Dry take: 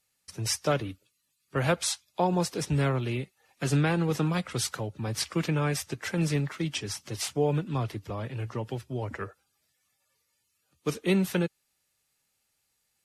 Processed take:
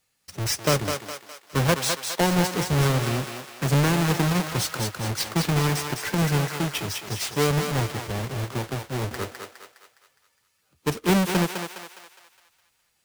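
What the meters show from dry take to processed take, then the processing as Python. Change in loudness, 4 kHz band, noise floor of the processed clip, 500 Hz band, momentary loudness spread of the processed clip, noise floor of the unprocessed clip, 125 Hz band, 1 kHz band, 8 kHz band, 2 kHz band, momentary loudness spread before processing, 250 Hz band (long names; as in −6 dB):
+5.0 dB, +7.0 dB, −70 dBFS, +3.5 dB, 12 LU, −76 dBFS, +5.0 dB, +6.0 dB, +5.0 dB, +6.5 dB, 9 LU, +4.0 dB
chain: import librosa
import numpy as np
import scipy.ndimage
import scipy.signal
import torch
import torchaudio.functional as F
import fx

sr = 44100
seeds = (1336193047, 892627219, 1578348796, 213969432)

y = fx.halfwave_hold(x, sr)
y = fx.echo_thinned(y, sr, ms=206, feedback_pct=49, hz=510.0, wet_db=-4.5)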